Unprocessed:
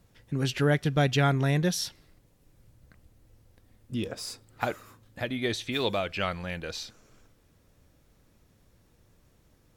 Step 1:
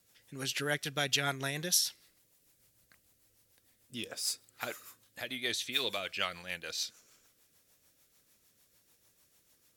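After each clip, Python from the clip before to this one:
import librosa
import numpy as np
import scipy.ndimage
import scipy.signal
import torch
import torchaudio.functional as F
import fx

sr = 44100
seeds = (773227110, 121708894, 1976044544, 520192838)

y = fx.tilt_eq(x, sr, slope=4.0)
y = fx.rotary(y, sr, hz=6.7)
y = F.gain(torch.from_numpy(y), -4.0).numpy()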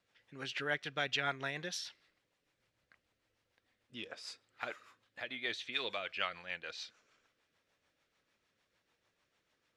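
y = scipy.signal.sosfilt(scipy.signal.butter(2, 2700.0, 'lowpass', fs=sr, output='sos'), x)
y = fx.low_shelf(y, sr, hz=390.0, db=-9.5)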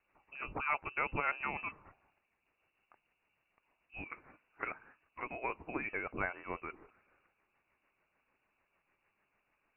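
y = fx.freq_invert(x, sr, carrier_hz=2800)
y = F.gain(torch.from_numpy(y), 1.5).numpy()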